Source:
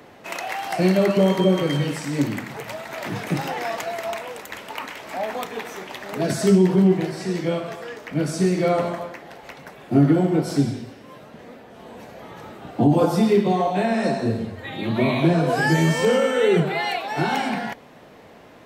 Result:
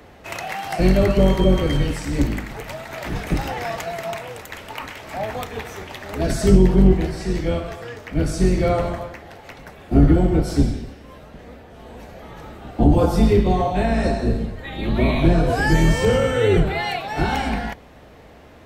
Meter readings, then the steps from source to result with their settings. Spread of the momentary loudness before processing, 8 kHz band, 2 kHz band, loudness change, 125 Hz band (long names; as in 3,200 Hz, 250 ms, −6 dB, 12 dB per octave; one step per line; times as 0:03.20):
17 LU, 0.0 dB, 0.0 dB, +1.5 dB, +3.5 dB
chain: sub-octave generator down 2 octaves, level +2 dB
notch filter 1,000 Hz, Q 25